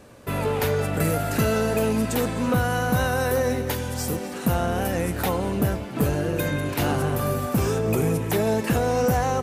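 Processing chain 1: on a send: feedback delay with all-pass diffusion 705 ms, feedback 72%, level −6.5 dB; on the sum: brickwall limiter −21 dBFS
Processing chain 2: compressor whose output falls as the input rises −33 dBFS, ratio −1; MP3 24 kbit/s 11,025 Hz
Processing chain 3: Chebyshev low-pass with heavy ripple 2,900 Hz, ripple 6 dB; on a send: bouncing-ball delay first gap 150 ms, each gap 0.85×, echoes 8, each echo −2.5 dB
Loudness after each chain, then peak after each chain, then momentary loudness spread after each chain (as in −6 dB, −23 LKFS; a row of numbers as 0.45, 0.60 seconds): −29.5, −33.5, −24.5 LKFS; −21.0, −15.5, −9.0 dBFS; 1, 6, 5 LU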